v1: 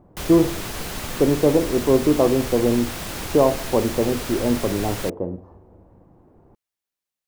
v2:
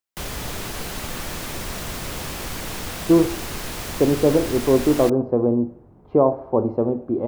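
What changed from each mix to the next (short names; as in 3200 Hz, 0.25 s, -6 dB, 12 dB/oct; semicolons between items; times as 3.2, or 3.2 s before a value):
speech: entry +2.80 s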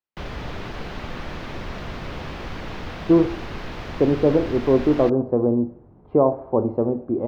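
master: add air absorption 260 m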